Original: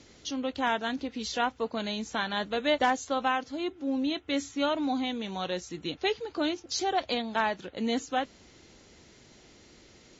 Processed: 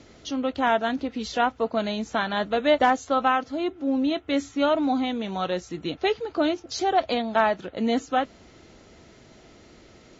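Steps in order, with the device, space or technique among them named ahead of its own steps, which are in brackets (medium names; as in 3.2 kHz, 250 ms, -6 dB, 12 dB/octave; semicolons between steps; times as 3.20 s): inside a helmet (treble shelf 3.1 kHz -8.5 dB; small resonant body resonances 660/1300 Hz, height 7 dB); trim +5.5 dB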